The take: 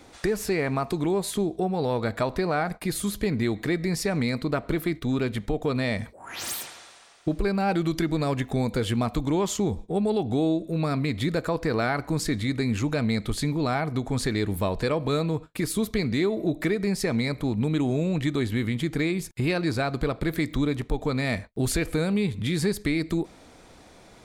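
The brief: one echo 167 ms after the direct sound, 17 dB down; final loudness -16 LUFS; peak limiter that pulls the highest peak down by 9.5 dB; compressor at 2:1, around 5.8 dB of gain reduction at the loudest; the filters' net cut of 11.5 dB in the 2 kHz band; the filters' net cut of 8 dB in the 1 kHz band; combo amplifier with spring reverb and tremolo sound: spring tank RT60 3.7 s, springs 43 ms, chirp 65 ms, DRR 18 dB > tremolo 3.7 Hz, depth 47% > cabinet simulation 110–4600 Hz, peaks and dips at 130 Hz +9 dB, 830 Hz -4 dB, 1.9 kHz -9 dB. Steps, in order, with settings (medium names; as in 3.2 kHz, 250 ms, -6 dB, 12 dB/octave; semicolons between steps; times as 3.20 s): peaking EQ 1 kHz -6.5 dB; peaking EQ 2 kHz -8 dB; compression 2:1, threshold -32 dBFS; peak limiter -27.5 dBFS; delay 167 ms -17 dB; spring tank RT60 3.7 s, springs 43 ms, chirp 65 ms, DRR 18 dB; tremolo 3.7 Hz, depth 47%; cabinet simulation 110–4600 Hz, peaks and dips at 130 Hz +9 dB, 830 Hz -4 dB, 1.9 kHz -9 dB; trim +22 dB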